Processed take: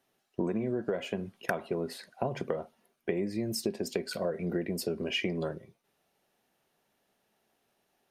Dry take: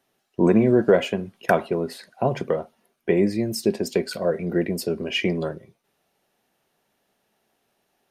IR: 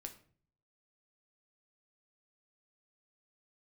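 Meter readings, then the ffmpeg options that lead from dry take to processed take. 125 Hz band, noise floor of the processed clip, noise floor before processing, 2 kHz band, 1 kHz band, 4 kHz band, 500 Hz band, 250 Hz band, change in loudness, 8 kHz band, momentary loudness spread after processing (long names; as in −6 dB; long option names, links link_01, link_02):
−10.5 dB, −77 dBFS, −73 dBFS, −8.5 dB, −11.5 dB, −6.5 dB, −11.5 dB, −11.5 dB, −11.0 dB, −5.5 dB, 7 LU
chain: -af "acompressor=threshold=-23dB:ratio=16,volume=-4dB"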